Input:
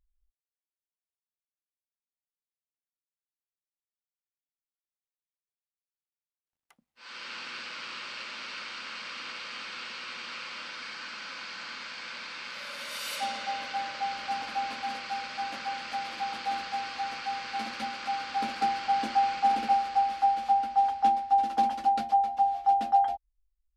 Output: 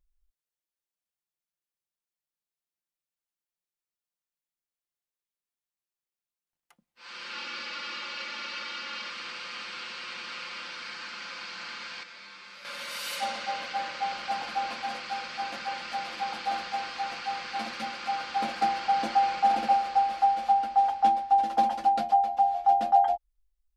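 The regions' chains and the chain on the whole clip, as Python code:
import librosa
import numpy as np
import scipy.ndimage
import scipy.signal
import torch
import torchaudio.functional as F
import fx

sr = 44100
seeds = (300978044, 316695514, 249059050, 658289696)

y = fx.chain(x, sr, fx.lowpass(hz=7100.0, slope=24),
    fx.comb(ms=3.5, depth=0.73), at=(7.33, 9.1))
y = fx.chain(y, sr, fx.notch(hz=2900.0, q=24.0),
    fx.comb_fb(f0_hz=98.0, decay_s=0.32, harmonics='all', damping=0.0, mix_pct=80), at=(12.03, 12.65))
y = fx.dynamic_eq(y, sr, hz=680.0, q=1.3, threshold_db=-38.0, ratio=4.0, max_db=7)
y = y + 0.43 * np.pad(y, (int(5.7 * sr / 1000.0), 0))[:len(y)]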